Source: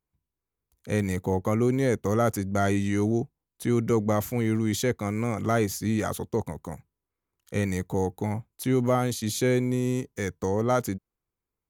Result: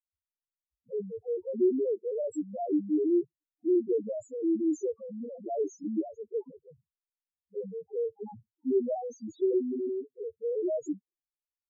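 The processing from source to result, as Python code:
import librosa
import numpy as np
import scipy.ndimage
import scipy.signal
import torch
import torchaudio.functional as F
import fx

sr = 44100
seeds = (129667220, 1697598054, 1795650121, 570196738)

y = fx.env_lowpass(x, sr, base_hz=310.0, full_db=-20.0)
y = fx.bass_treble(y, sr, bass_db=-14, treble_db=10)
y = fx.env_phaser(y, sr, low_hz=330.0, high_hz=3300.0, full_db=-30.0)
y = fx.spec_topn(y, sr, count=1)
y = fx.small_body(y, sr, hz=(310.0, 3200.0), ring_ms=25, db=15)
y = y * librosa.db_to_amplitude(-1.5)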